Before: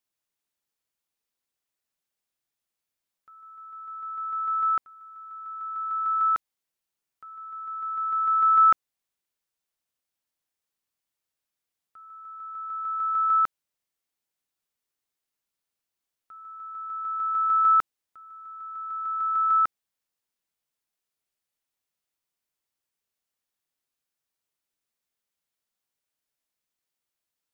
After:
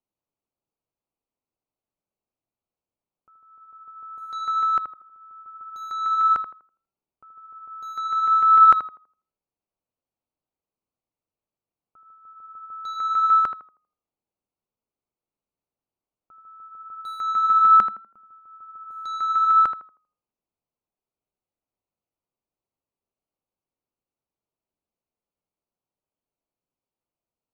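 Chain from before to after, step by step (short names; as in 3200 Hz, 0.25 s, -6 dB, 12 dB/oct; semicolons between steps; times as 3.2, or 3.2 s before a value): Wiener smoothing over 25 samples; 17.25–18.31 bell 210 Hz +13 dB 0.35 oct; tape echo 80 ms, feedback 35%, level -7.5 dB, low-pass 1500 Hz; gain +5 dB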